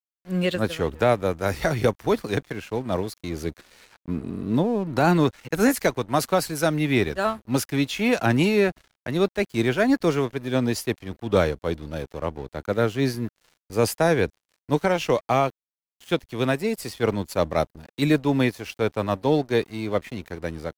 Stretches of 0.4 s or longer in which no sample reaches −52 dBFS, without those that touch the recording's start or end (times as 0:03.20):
0:15.50–0:16.01